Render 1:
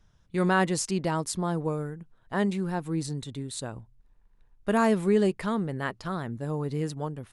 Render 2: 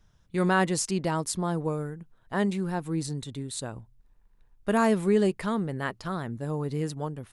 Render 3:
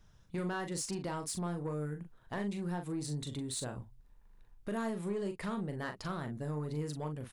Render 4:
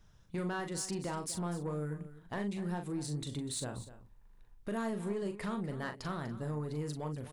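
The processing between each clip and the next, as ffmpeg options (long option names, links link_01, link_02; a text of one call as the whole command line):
ffmpeg -i in.wav -af "highshelf=frequency=9700:gain=4" out.wav
ffmpeg -i in.wav -filter_complex "[0:a]acompressor=threshold=-34dB:ratio=4,asoftclip=type=tanh:threshold=-30dB,asplit=2[link_01][link_02];[link_02]adelay=40,volume=-7dB[link_03];[link_01][link_03]amix=inputs=2:normalize=0" out.wav
ffmpeg -i in.wav -af "aecho=1:1:246:0.178" out.wav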